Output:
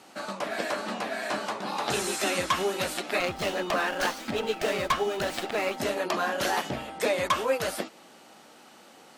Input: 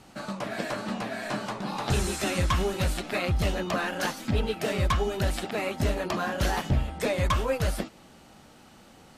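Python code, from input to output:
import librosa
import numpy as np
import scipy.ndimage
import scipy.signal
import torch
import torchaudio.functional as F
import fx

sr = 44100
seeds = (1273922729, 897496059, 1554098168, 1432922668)

y = scipy.signal.sosfilt(scipy.signal.butter(2, 320.0, 'highpass', fs=sr, output='sos'), x)
y = fx.running_max(y, sr, window=3, at=(3.2, 5.77))
y = y * 10.0 ** (2.5 / 20.0)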